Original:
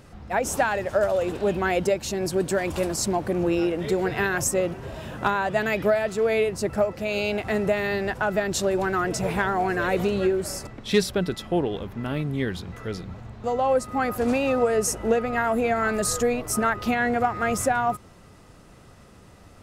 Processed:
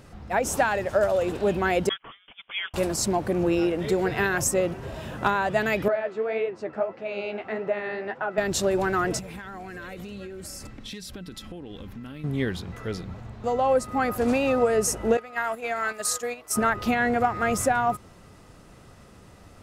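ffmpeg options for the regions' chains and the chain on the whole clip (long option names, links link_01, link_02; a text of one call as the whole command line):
ffmpeg -i in.wav -filter_complex "[0:a]asettb=1/sr,asplit=3[link_01][link_02][link_03];[link_01]atrim=end=1.894[link_04];[link_02]atrim=start=1.89:end=2.74,asetpts=PTS-STARTPTS,afade=type=in:duration=0.004:curve=qsin,afade=type=out:start_time=0.846:duration=0.004:curve=qsin,highpass=frequency=760:width=0.5412,highpass=frequency=760:width=1.3066,agate=range=-20dB:threshold=-37dB:ratio=16:release=100:detection=peak,lowpass=frequency=3300:width_type=q:width=0.5098,lowpass=frequency=3300:width_type=q:width=0.6013,lowpass=frequency=3300:width_type=q:width=0.9,lowpass=frequency=3300:width_type=q:width=2.563,afreqshift=-3900[link_05];[link_03]atrim=start=2.736[link_06];[link_04][link_05]acrossfade=duration=0.004:curve1=hsin:curve2=qsin[link_07];[link_07][link_06]acrossfade=duration=0.004:curve1=qsin:curve2=hsin,asettb=1/sr,asplit=3[link_08][link_09][link_10];[link_08]atrim=end=5.884[link_11];[link_09]atrim=start=5.88:end=8.38,asetpts=PTS-STARTPTS,afade=type=in:duration=0.004:curve=qsin,afade=type=out:start_time=2.496:duration=0.004:curve=qsin,highpass=270,lowpass=2400,flanger=delay=6.1:depth=8.3:regen=42:speed=1.7:shape=triangular[link_12];[link_10]atrim=start=8.376[link_13];[link_11][link_12]acrossfade=duration=0.004:curve1=hsin:curve2=qsin[link_14];[link_14][link_13]acrossfade=duration=0.004:curve1=qsin:curve2=hsin,asettb=1/sr,asplit=3[link_15][link_16][link_17];[link_15]atrim=end=9.194[link_18];[link_16]atrim=start=9.19:end=12.24,asetpts=PTS-STARTPTS,afade=type=in:duration=0.004:curve=qsin,afade=type=out:start_time=3.046:duration=0.004:curve=qsin,equalizer=frequency=700:width_type=o:width=1.9:gain=-8.5,aecho=1:1:3.8:0.33,atrim=end_sample=134505,acompressor=threshold=-34dB:ratio=16:attack=3.2:release=140:knee=1:detection=peak[link_19];[link_17]atrim=start=12.236[link_20];[link_18][link_19]acrossfade=duration=0.004:curve1=hsin:curve2=qsin[link_21];[link_21][link_20]acrossfade=duration=0.004:curve1=qsin:curve2=hsin,asettb=1/sr,asplit=3[link_22][link_23][link_24];[link_22]atrim=end=15.174[link_25];[link_23]atrim=start=15.17:end=16.56,asetpts=PTS-STARTPTS,afade=type=in:duration=0.004:curve=qsin,afade=type=out:start_time=1.386:duration=0.004:curve=qsin,highpass=frequency=1100:poles=1,aeval=exprs='val(0)+0.001*(sin(2*PI*60*n/s)+sin(2*PI*2*60*n/s)/2+sin(2*PI*3*60*n/s)/3+sin(2*PI*4*60*n/s)/4+sin(2*PI*5*60*n/s)/5)':channel_layout=same,agate=range=-8dB:threshold=-32dB:ratio=16:release=100:detection=peak[link_26];[link_24]atrim=start=16.556[link_27];[link_25][link_26]acrossfade=duration=0.004:curve1=hsin:curve2=qsin[link_28];[link_28][link_27]acrossfade=duration=0.004:curve1=qsin:curve2=hsin" out.wav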